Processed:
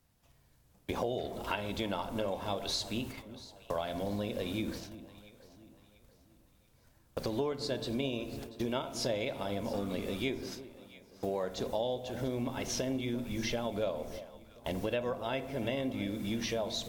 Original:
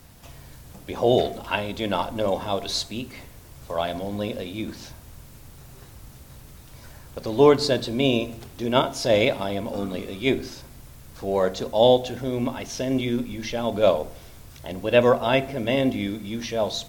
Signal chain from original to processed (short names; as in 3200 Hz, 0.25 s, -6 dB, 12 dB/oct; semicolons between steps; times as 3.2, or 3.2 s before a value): 10.43–11.44 HPF 110 Hz; gate -38 dBFS, range -22 dB; on a send at -18.5 dB: reverb, pre-delay 49 ms; on the sum: compressor 10:1, threshold -31 dBFS, peak gain reduction 20.5 dB; echo with dull and thin repeats by turns 0.344 s, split 890 Hz, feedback 60%, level -13 dB